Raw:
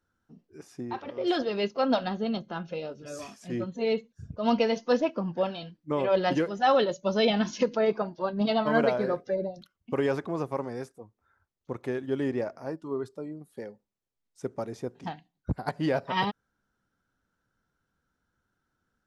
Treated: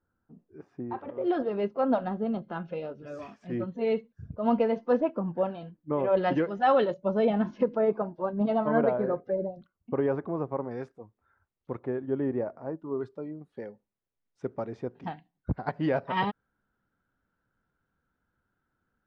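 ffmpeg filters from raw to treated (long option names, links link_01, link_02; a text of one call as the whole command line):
ffmpeg -i in.wav -af "asetnsamples=nb_out_samples=441:pad=0,asendcmd='2.42 lowpass f 2100;4.33 lowpass f 1400;6.17 lowpass f 2200;6.94 lowpass f 1200;10.71 lowpass f 2600;11.79 lowpass f 1200;13.01 lowpass f 2500',lowpass=1300" out.wav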